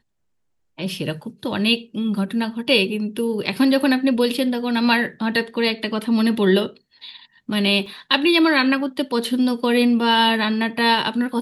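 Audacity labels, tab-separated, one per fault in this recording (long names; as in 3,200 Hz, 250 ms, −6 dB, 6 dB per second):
7.860000	7.860000	drop-out 3.6 ms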